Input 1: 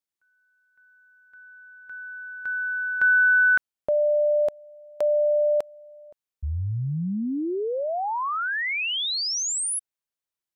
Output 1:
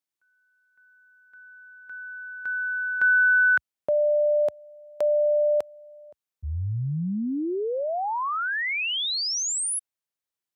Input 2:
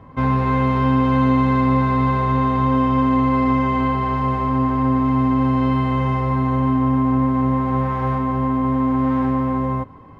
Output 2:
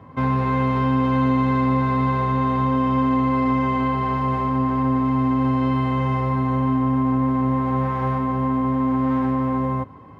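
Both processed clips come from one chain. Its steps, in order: HPF 71 Hz 24 dB/oct; in parallel at -3 dB: limiter -16 dBFS; on the sum: gain -5 dB

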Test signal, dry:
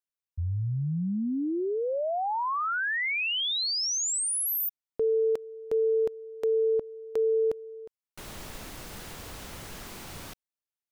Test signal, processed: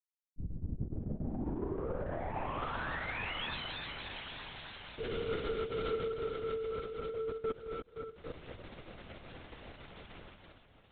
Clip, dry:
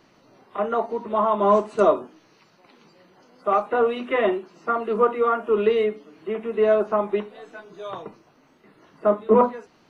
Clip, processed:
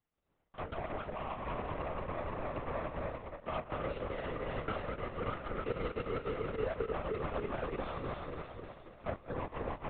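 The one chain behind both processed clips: regenerating reverse delay 0.146 s, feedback 77%, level -3 dB; reverse; compressor 16:1, threshold -27 dBFS; reverse; limiter -24 dBFS; on a send: diffused feedback echo 0.863 s, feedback 54%, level -9 dB; on the sum: power-law curve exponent 2; LPC vocoder at 8 kHz whisper

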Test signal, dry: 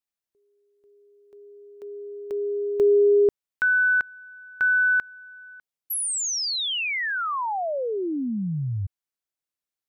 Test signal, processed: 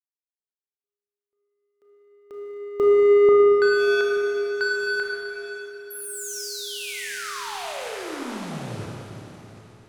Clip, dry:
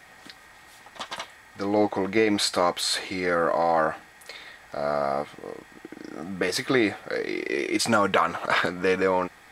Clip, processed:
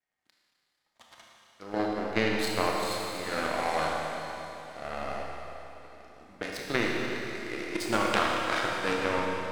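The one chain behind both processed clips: diffused feedback echo 0.889 s, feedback 43%, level -9.5 dB; power-law curve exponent 2; Schroeder reverb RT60 3.1 s, combs from 25 ms, DRR -2 dB

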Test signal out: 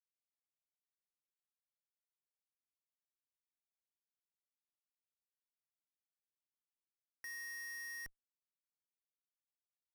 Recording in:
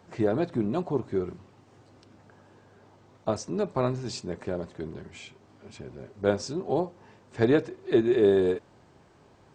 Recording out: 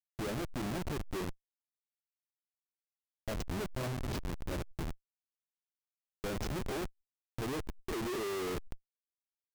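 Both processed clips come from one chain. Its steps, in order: feedback echo 0.483 s, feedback 41%, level -19.5 dB; Schmitt trigger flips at -31 dBFS; backwards sustainer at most 93 dB/s; gain -6 dB

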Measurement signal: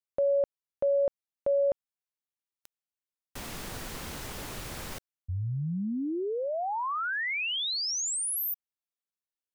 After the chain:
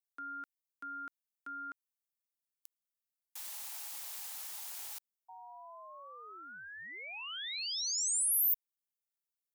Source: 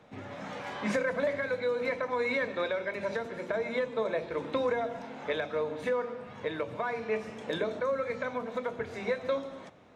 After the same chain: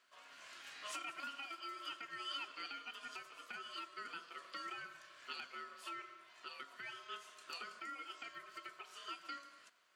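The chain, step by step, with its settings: ring modulator 840 Hz; differentiator; gain +1.5 dB

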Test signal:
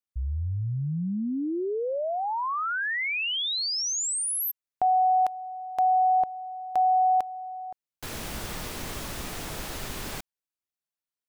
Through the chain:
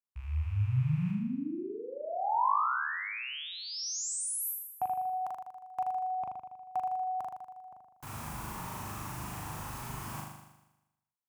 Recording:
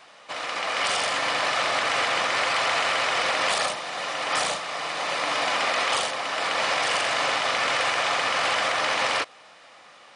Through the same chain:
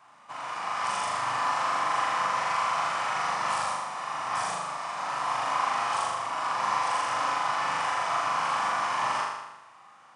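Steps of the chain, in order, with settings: rattling part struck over -43 dBFS, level -33 dBFS; ten-band EQ 125 Hz +7 dB, 500 Hz -10 dB, 1000 Hz +11 dB, 2000 Hz -4 dB, 4000 Hz -9 dB; on a send: flutter echo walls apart 6.8 m, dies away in 0.98 s; on the sum: dynamic EQ 5400 Hz, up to +3 dB, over -45 dBFS, Q 3.2; HPF 49 Hz; gain -9 dB

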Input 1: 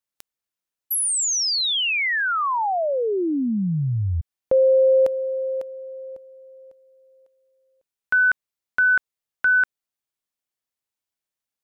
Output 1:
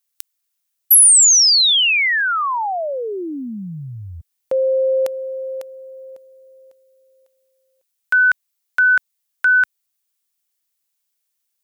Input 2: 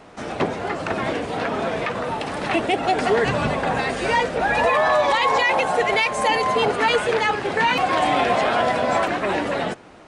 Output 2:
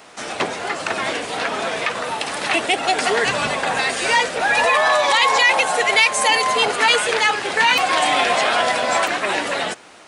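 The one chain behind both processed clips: tilt +3.5 dB/oct; gain +2 dB

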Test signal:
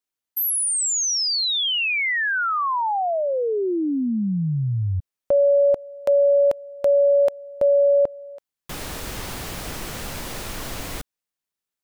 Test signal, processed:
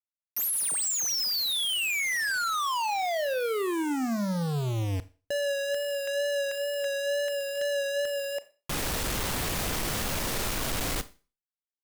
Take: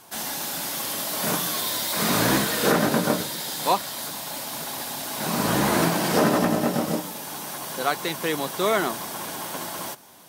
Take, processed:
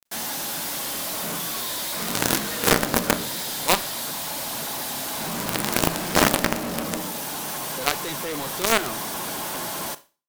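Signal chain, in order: companded quantiser 2-bit; wow and flutter 28 cents; Schroeder reverb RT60 0.34 s, combs from 27 ms, DRR 15 dB; gain -3.5 dB

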